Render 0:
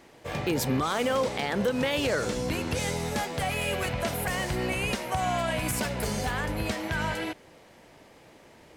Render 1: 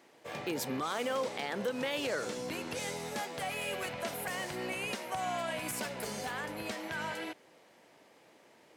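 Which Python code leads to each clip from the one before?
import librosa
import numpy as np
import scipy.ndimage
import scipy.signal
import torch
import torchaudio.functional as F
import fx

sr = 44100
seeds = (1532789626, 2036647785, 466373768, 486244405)

y = scipy.signal.sosfilt(scipy.signal.bessel(2, 250.0, 'highpass', norm='mag', fs=sr, output='sos'), x)
y = y * librosa.db_to_amplitude(-6.5)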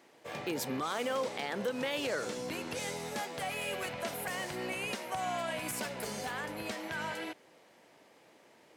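y = x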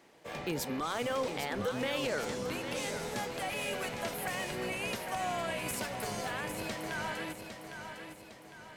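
y = fx.octave_divider(x, sr, octaves=1, level_db=-5.0)
y = fx.echo_feedback(y, sr, ms=806, feedback_pct=46, wet_db=-8)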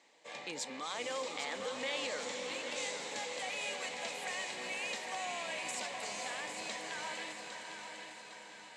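y = fx.cabinet(x, sr, low_hz=380.0, low_slope=12, high_hz=8000.0, hz=(380.0, 670.0, 1400.0, 2100.0, 3900.0, 7400.0), db=(-9, -4, -8, 3, 5, 8))
y = fx.echo_diffused(y, sr, ms=545, feedback_pct=58, wet_db=-7.0)
y = y * librosa.db_to_amplitude(-3.0)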